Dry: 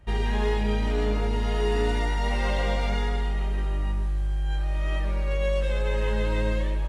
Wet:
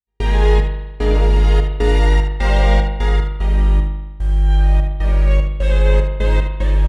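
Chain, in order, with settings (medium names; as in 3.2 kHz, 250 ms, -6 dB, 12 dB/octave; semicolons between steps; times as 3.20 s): trance gate ".xx..xxx.xx.xx.x" 75 bpm -60 dB; delay 74 ms -9.5 dB; spring tank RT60 1.1 s, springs 40 ms, chirp 40 ms, DRR 5.5 dB; trim +7 dB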